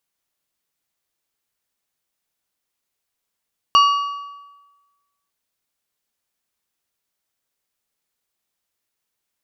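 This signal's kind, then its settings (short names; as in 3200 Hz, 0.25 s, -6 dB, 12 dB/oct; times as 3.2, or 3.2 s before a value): metal hit plate, lowest mode 1140 Hz, modes 4, decay 1.24 s, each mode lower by 7 dB, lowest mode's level -8 dB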